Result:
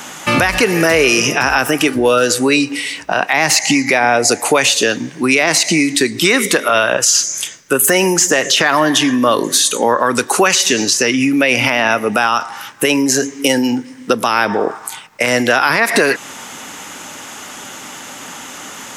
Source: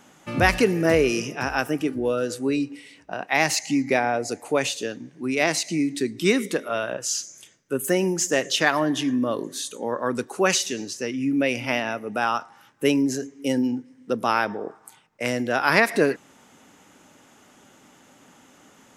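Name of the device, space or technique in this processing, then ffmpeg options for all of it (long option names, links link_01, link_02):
mastering chain: -filter_complex "[0:a]equalizer=frequency=1000:width_type=o:width=0.77:gain=2.5,acrossover=split=480|1900[link_01][link_02][link_03];[link_01]acompressor=threshold=-28dB:ratio=4[link_04];[link_02]acompressor=threshold=-25dB:ratio=4[link_05];[link_03]acompressor=threshold=-34dB:ratio=4[link_06];[link_04][link_05][link_06]amix=inputs=3:normalize=0,acompressor=threshold=-29dB:ratio=2,tiltshelf=frequency=970:gain=-5.5,asoftclip=type=hard:threshold=-14dB,alimiter=level_in=21.5dB:limit=-1dB:release=50:level=0:latency=1,volume=-1dB"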